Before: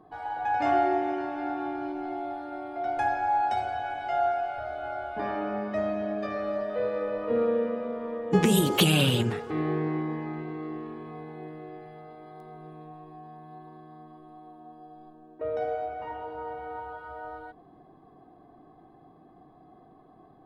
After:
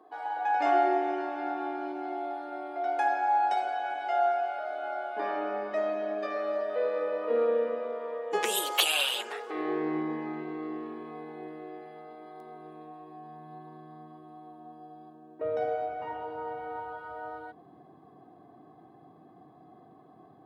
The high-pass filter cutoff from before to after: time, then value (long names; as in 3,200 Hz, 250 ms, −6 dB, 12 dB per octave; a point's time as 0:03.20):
high-pass filter 24 dB per octave
0:07.74 320 Hz
0:09.09 720 Hz
0:09.97 210 Hz
0:13.00 210 Hz
0:13.87 95 Hz